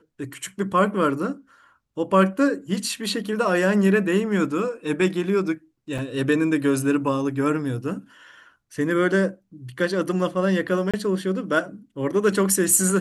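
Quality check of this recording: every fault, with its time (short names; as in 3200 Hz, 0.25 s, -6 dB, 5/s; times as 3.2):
5.98–5.99 gap 5.3 ms
10.91–10.94 gap 26 ms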